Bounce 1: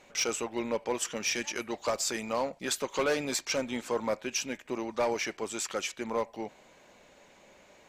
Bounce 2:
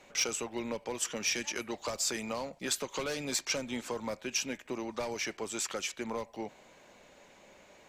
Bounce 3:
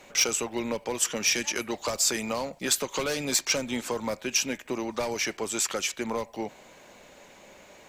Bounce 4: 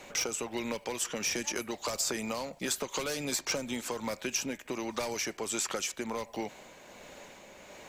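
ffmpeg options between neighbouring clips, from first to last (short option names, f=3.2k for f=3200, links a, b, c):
-filter_complex "[0:a]acrossover=split=190|3000[a][b][c];[b]acompressor=threshold=-34dB:ratio=6[d];[a][d][c]amix=inputs=3:normalize=0"
-af "highshelf=f=11k:g=8,volume=6dB"
-filter_complex "[0:a]tremolo=f=1.4:d=0.34,acrossover=split=1400|5400[a][b][c];[a]acompressor=threshold=-36dB:ratio=4[d];[b]acompressor=threshold=-42dB:ratio=4[e];[c]acompressor=threshold=-37dB:ratio=4[f];[d][e][f]amix=inputs=3:normalize=0,volume=2.5dB"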